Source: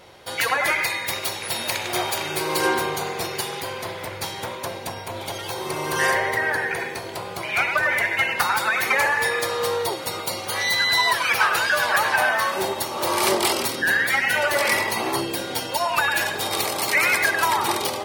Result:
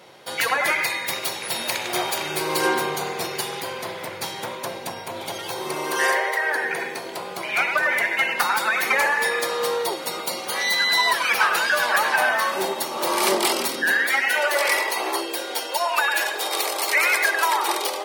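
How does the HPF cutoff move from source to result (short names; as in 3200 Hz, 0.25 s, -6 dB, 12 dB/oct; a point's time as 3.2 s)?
HPF 24 dB/oct
5.59 s 130 Hz
6.41 s 490 Hz
6.71 s 170 Hz
13.68 s 170 Hz
14.51 s 360 Hz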